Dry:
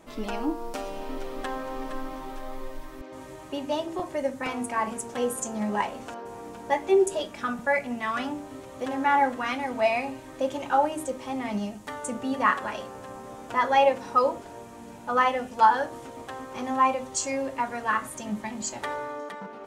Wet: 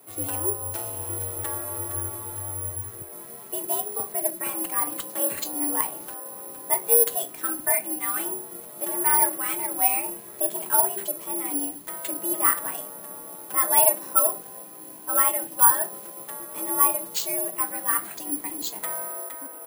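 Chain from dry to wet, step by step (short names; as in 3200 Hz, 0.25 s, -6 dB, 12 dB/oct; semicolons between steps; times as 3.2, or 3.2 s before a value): careless resampling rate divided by 4×, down none, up zero stuff; frequency shift +80 Hz; dynamic EQ 180 Hz, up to +5 dB, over -49 dBFS, Q 1.6; gain -4.5 dB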